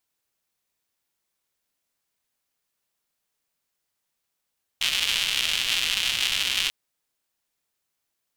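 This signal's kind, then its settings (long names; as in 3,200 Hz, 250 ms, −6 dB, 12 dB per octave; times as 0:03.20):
rain-like ticks over hiss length 1.89 s, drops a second 250, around 3,000 Hz, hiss −20 dB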